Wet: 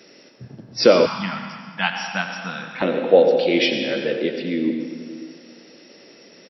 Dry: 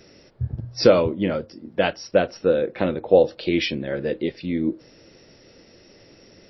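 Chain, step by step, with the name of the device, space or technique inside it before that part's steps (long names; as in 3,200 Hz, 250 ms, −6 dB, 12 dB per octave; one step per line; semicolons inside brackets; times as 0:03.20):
PA in a hall (high-pass filter 180 Hz 24 dB per octave; parametric band 2,900 Hz +4 dB 2 octaves; single-tap delay 90 ms −12 dB; convolution reverb RT60 1.8 s, pre-delay 105 ms, DRR 5.5 dB)
0:01.06–0:02.82: drawn EQ curve 190 Hz 0 dB, 350 Hz −26 dB, 530 Hz −27 dB, 840 Hz +4 dB, 2,600 Hz −1 dB
level +1 dB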